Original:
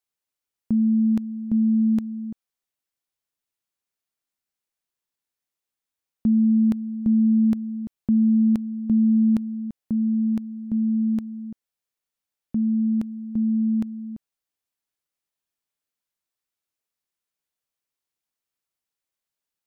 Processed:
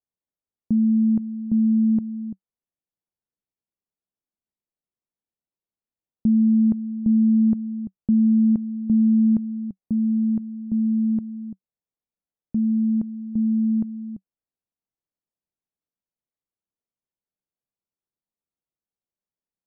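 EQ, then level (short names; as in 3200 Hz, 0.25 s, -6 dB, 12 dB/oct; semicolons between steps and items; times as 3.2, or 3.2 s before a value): Bessel low-pass 590 Hz, order 2; bell 190 Hz +4.5 dB 0.28 oct; 0.0 dB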